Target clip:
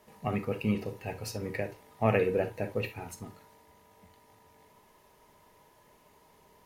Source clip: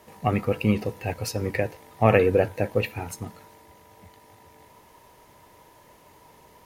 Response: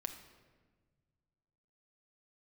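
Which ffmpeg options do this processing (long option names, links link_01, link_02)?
-filter_complex "[1:a]atrim=start_sample=2205,atrim=end_sample=3969,asetrate=52920,aresample=44100[link_01];[0:a][link_01]afir=irnorm=-1:irlink=0,volume=-4dB"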